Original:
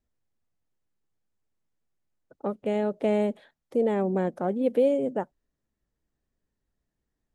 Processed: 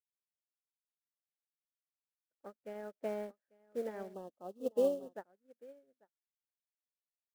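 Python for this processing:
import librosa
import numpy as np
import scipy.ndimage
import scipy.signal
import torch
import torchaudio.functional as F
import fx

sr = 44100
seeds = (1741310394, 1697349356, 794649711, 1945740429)

y = fx.cvsd(x, sr, bps=64000)
y = fx.lowpass(y, sr, hz=3600.0, slope=6)
y = fx.high_shelf(y, sr, hz=2800.0, db=-2.5)
y = fx.quant_companded(y, sr, bits=6)
y = fx.graphic_eq_15(y, sr, hz=(160, 630, 1600), db=(-7, 3, 11))
y = y + 10.0 ** (-9.5 / 20.0) * np.pad(y, (int(844 * sr / 1000.0), 0))[:len(y)]
y = fx.spec_box(y, sr, start_s=4.14, length_s=1.0, low_hz=1300.0, high_hz=2600.0, gain_db=-20)
y = fx.upward_expand(y, sr, threshold_db=-42.0, expansion=2.5)
y = y * librosa.db_to_amplitude(-8.5)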